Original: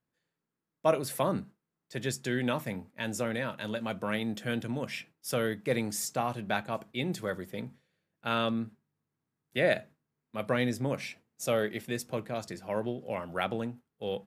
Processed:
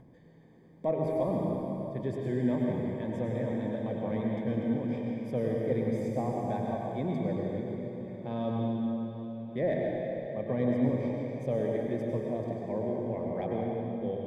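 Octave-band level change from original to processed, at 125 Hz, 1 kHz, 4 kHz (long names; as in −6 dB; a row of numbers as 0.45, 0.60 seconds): +4.0, −3.0, −16.0 decibels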